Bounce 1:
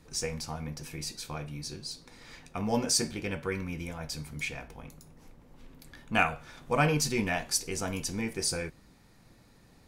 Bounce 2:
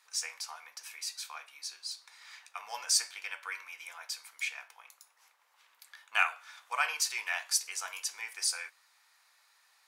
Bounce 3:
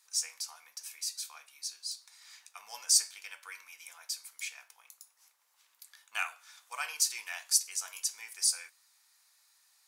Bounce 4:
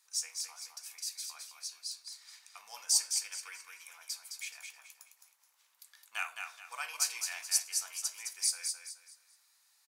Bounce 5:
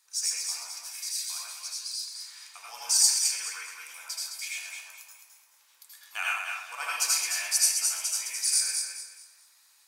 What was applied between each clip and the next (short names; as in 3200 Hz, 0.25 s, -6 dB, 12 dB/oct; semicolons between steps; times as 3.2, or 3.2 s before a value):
HPF 980 Hz 24 dB/oct
tone controls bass +9 dB, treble +13 dB; gain -8 dB
feedback echo 0.213 s, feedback 31%, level -5.5 dB; gain -3 dB
reverb RT60 0.50 s, pre-delay 74 ms, DRR -4.5 dB; gain +2.5 dB